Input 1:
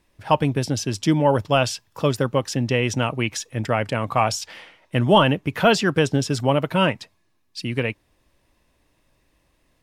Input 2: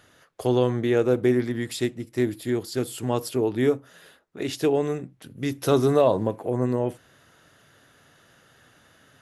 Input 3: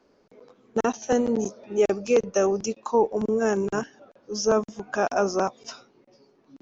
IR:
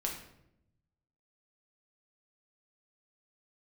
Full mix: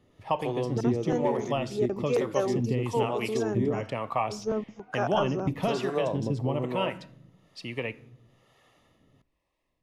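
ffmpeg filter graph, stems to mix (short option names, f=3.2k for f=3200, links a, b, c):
-filter_complex "[0:a]agate=range=-6dB:threshold=-48dB:ratio=16:detection=peak,volume=-4.5dB,asplit=2[a][b];[b]volume=-15dB[c];[1:a]bandreject=f=1.6k:w=7.4,volume=-1.5dB,asplit=3[d][e][f];[d]atrim=end=3.84,asetpts=PTS-STARTPTS,afade=t=out:st=3.836:d=0.004:c=hsin[g];[e]atrim=start=3.84:end=5.47,asetpts=PTS-STARTPTS,volume=0[h];[f]atrim=start=5.47,asetpts=PTS-STARTPTS,afade=t=in:d=0.004:c=hsin[i];[g][h][i]concat=n=3:v=0:a=1,asplit=2[j][k];[k]volume=-23dB[l];[2:a]volume=-3.5dB[m];[a][j]amix=inputs=2:normalize=0,asuperstop=centerf=1500:order=4:qfactor=3.9,acompressor=threshold=-22dB:ratio=6,volume=0dB[n];[3:a]atrim=start_sample=2205[o];[c][l]amix=inputs=2:normalize=0[p];[p][o]afir=irnorm=-1:irlink=0[q];[m][n][q]amix=inputs=3:normalize=0,highshelf=f=4.2k:g=-10.5,acrossover=split=410[r][s];[r]aeval=exprs='val(0)*(1-0.7/2+0.7/2*cos(2*PI*1.1*n/s))':c=same[t];[s]aeval=exprs='val(0)*(1-0.7/2-0.7/2*cos(2*PI*1.1*n/s))':c=same[u];[t][u]amix=inputs=2:normalize=0"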